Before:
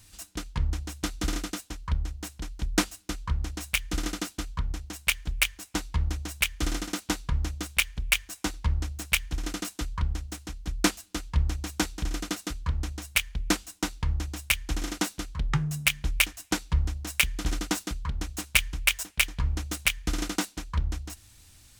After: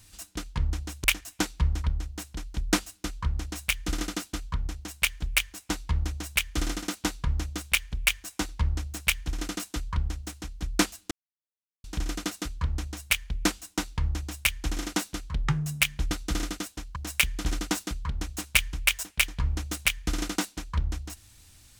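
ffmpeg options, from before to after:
-filter_complex "[0:a]asplit=7[s0][s1][s2][s3][s4][s5][s6];[s0]atrim=end=1.042[s7];[s1]atrim=start=16.158:end=16.962[s8];[s2]atrim=start=1.888:end=11.16,asetpts=PTS-STARTPTS,afade=t=out:st=9.268:d=0.004:c=hsin[s9];[s3]atrim=start=11.16:end=11.89,asetpts=PTS-STARTPTS,volume=0[s10];[s4]atrim=start=11.89:end=16.162,asetpts=PTS-STARTPTS,afade=t=in:d=0.004:c=hsin[s11];[s5]atrim=start=1.038:end=1.892[s12];[s6]atrim=start=16.958[s13];[s7][s8]acrossfade=d=0.004:c1=hsin:c2=hsin[s14];[s9][s10][s11]concat=n=3:v=0:a=1[s15];[s14][s15]acrossfade=d=0.004:c1=hsin:c2=hsin[s16];[s16][s12]acrossfade=d=0.004:c1=hsin:c2=hsin[s17];[s17][s13]acrossfade=d=0.004:c1=hsin:c2=hsin"

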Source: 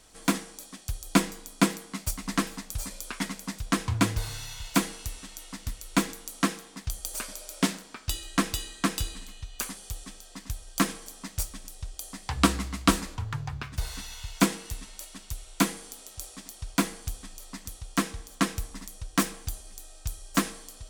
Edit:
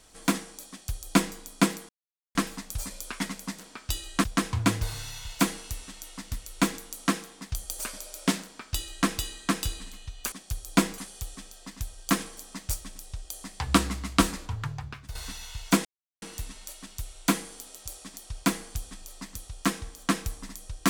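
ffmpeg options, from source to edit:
-filter_complex "[0:a]asplit=9[s0][s1][s2][s3][s4][s5][s6][s7][s8];[s0]atrim=end=1.89,asetpts=PTS-STARTPTS,afade=t=out:st=1.886:d=0.004:c=hsin[s9];[s1]atrim=start=1.89:end=2.35,asetpts=PTS-STARTPTS,volume=0[s10];[s2]atrim=start=2.35:end=3.592,asetpts=PTS-STARTPTS,afade=t=in:d=0.004:c=hsin[s11];[s3]atrim=start=7.778:end=8.432[s12];[s4]atrim=start=3.588:end=9.672[s13];[s5]atrim=start=0.698:end=1.362[s14];[s6]atrim=start=9.668:end=13.84,asetpts=PTS-STARTPTS,afade=t=out:st=3.662:d=0.51:silence=0.298538[s15];[s7]atrim=start=13.84:end=14.54,asetpts=PTS-STARTPTS,afade=t=in:d=0.004:c=hsin:silence=0.298538,afade=t=out:st=0.696:d=0.004:c=hsin,apad=pad_dur=0.37[s16];[s8]atrim=start=14.54,asetpts=PTS-STARTPTS,afade=t=in:d=0.004:c=hsin[s17];[s9][s10][s11]concat=n=3:v=0:a=1[s18];[s18][s12]acrossfade=d=0.004:c1=hsin:c2=hsin[s19];[s19][s13]acrossfade=d=0.004:c1=hsin:c2=hsin[s20];[s20][s14]acrossfade=d=0.004:c1=hsin:c2=hsin[s21];[s15][s16][s17]concat=n=3:v=0:a=1[s22];[s21][s22]acrossfade=d=0.004:c1=hsin:c2=hsin"

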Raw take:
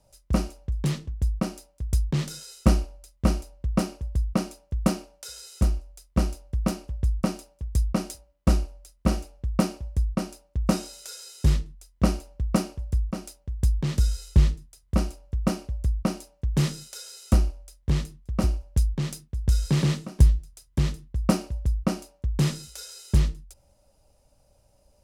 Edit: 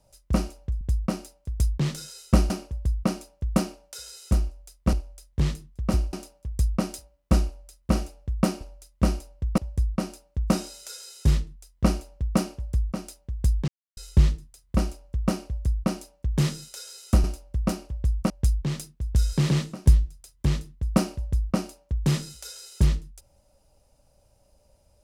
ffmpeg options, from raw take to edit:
-filter_complex "[0:a]asplit=11[s0][s1][s2][s3][s4][s5][s6][s7][s8][s9][s10];[s0]atrim=end=0.812[s11];[s1]atrim=start=1.138:end=2.832[s12];[s2]atrim=start=3.798:end=6.232[s13];[s3]atrim=start=17.428:end=18.632[s14];[s4]atrim=start=7.288:end=9.772[s15];[s5]atrim=start=2.828:end=3.802[s16];[s6]atrim=start=9.768:end=13.87,asetpts=PTS-STARTPTS,afade=t=out:st=4.098:d=0.004:c=hsin[s17];[s7]atrim=start=13.87:end=14.16,asetpts=PTS-STARTPTS,volume=0[s18];[s8]atrim=start=14.16:end=17.432,asetpts=PTS-STARTPTS,afade=t=in:d=0.004:c=hsin[s19];[s9]atrim=start=6.228:end=7.292[s20];[s10]atrim=start=18.628[s21];[s11][s12]acrossfade=d=0.004:c1=hsin:c2=hsin[s22];[s22][s13]acrossfade=d=0.004:c1=hsin:c2=hsin[s23];[s23][s14]acrossfade=d=0.004:c1=hsin:c2=hsin[s24];[s24][s15]acrossfade=d=0.004:c1=hsin:c2=hsin[s25];[s25][s16]acrossfade=d=0.004:c1=hsin:c2=hsin[s26];[s17][s18][s19]concat=n=3:v=0:a=1[s27];[s26][s27]acrossfade=d=0.004:c1=hsin:c2=hsin[s28];[s28][s20]acrossfade=d=0.004:c1=hsin:c2=hsin[s29];[s29][s21]acrossfade=d=0.004:c1=hsin:c2=hsin"

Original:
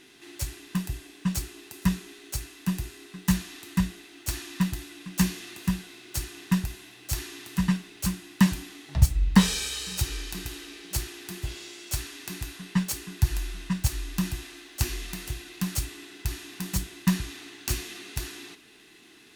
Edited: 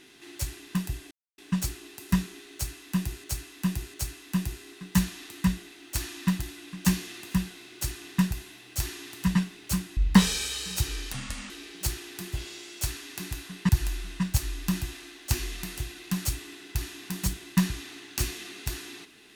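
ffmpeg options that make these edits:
-filter_complex "[0:a]asplit=8[s0][s1][s2][s3][s4][s5][s6][s7];[s0]atrim=end=1.11,asetpts=PTS-STARTPTS,afade=t=out:st=1.106:d=0.004:c=hsin,apad=pad_dur=0.27[s8];[s1]atrim=start=1.11:end=2.972,asetpts=PTS-STARTPTS,afade=t=in:d=0.004:c=hsin[s9];[s2]atrim=start=2.268:end=2.972[s10];[s3]atrim=start=2.268:end=8.302[s11];[s4]atrim=start=9.178:end=10.334[s12];[s5]atrim=start=10.33:end=10.6,asetpts=PTS-STARTPTS,asetrate=31311,aresample=44100,atrim=end_sample=16770,asetpts=PTS-STARTPTS[s13];[s6]atrim=start=10.596:end=12.792[s14];[s7]atrim=start=13.188[s15];[s8][s9]concat=n=2:v=0:a=1[s16];[s16][s10]acrossfade=d=0.004:c1=hsin:c2=hsin[s17];[s17][s11]acrossfade=d=0.004:c1=hsin:c2=hsin[s18];[s18][s12]acrossfade=d=0.004:c1=hsin:c2=hsin[s19];[s19][s13]acrossfade=d=0.004:c1=hsin:c2=hsin[s20];[s20][s14]acrossfade=d=0.004:c1=hsin:c2=hsin[s21];[s21][s15]acrossfade=d=0.004:c1=hsin:c2=hsin"

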